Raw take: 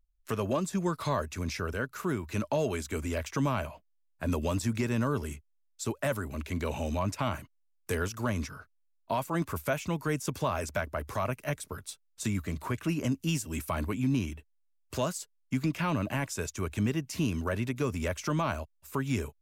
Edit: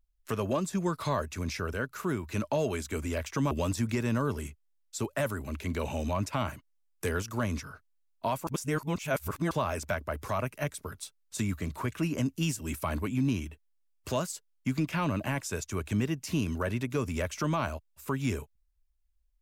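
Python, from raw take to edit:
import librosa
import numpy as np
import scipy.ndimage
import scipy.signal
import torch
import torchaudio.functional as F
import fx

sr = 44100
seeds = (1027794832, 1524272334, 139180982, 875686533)

y = fx.edit(x, sr, fx.cut(start_s=3.51, length_s=0.86),
    fx.reverse_span(start_s=9.33, length_s=1.04), tone=tone)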